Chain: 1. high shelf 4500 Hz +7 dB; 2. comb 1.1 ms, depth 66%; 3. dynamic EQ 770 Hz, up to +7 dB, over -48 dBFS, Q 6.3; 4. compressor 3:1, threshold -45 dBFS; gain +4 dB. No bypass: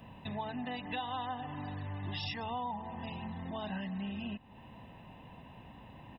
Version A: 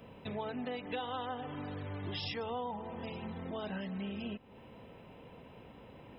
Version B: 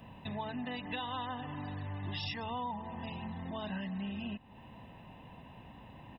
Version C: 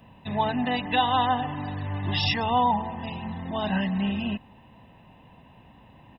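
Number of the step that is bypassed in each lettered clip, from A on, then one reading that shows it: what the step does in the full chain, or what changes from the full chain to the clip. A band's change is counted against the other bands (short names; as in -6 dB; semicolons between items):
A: 2, 500 Hz band +6.5 dB; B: 3, 1 kHz band -1.5 dB; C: 4, mean gain reduction 8.0 dB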